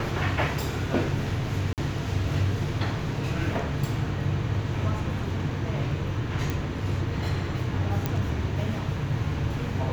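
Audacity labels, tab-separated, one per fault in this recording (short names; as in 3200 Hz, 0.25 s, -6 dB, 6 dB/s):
1.730000	1.780000	gap 48 ms
6.500000	6.500000	pop
8.060000	8.060000	pop -12 dBFS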